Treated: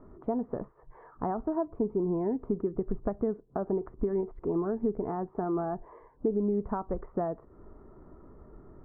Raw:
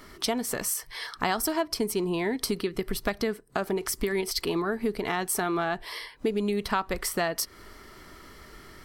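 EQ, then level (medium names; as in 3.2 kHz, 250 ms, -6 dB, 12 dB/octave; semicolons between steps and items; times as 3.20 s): Bessel low-pass 670 Hz, order 6; 0.0 dB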